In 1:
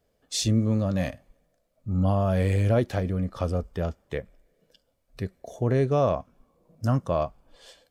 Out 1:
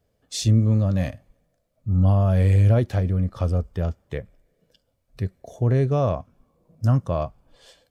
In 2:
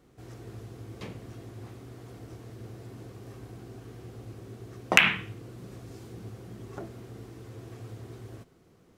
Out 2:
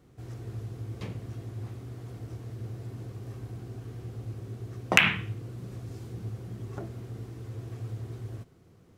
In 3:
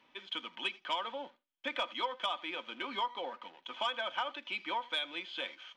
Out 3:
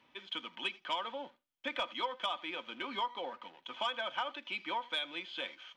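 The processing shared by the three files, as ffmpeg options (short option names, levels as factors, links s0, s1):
-af "equalizer=f=100:t=o:w=1.4:g=8.5,volume=0.891"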